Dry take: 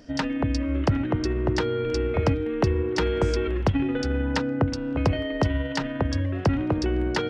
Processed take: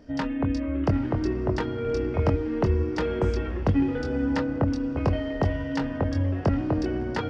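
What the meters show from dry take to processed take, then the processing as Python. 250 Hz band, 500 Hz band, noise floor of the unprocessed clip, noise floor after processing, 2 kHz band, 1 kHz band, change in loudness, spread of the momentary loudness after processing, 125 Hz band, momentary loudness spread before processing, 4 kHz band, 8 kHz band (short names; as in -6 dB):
0.0 dB, -2.0 dB, -30 dBFS, -31 dBFS, -4.0 dB, -2.0 dB, -1.0 dB, 3 LU, -1.0 dB, 2 LU, -7.5 dB, n/a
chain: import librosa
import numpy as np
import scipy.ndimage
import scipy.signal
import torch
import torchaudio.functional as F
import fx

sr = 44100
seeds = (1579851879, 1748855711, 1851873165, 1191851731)

p1 = fx.high_shelf(x, sr, hz=2500.0, db=-10.5)
p2 = fx.chorus_voices(p1, sr, voices=6, hz=0.49, base_ms=23, depth_ms=2.7, mix_pct=35)
p3 = p2 + fx.echo_diffused(p2, sr, ms=916, feedback_pct=40, wet_db=-15.0, dry=0)
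y = p3 * 10.0 ** (2.0 / 20.0)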